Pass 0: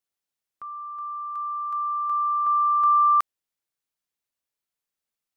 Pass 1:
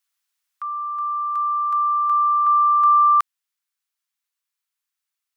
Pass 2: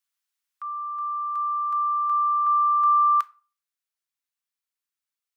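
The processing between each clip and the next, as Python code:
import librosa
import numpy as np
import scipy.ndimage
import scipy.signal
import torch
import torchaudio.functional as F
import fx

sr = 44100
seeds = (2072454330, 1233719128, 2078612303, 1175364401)

y1 = scipy.signal.sosfilt(scipy.signal.butter(4, 1000.0, 'highpass', fs=sr, output='sos'), x)
y1 = fx.rider(y1, sr, range_db=3, speed_s=2.0)
y1 = y1 * 10.0 ** (6.5 / 20.0)
y2 = fx.room_shoebox(y1, sr, seeds[0], volume_m3=290.0, walls='furnished', distance_m=0.36)
y2 = y2 * 10.0 ** (-6.0 / 20.0)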